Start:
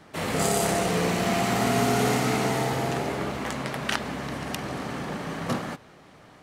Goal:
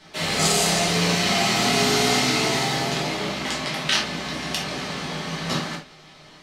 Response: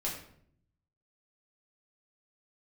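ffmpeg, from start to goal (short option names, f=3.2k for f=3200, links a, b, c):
-filter_complex "[0:a]equalizer=f=4.3k:w=0.63:g=14.5[a];[1:a]atrim=start_sample=2205,atrim=end_sample=3969[b];[a][b]afir=irnorm=-1:irlink=0,volume=-3.5dB"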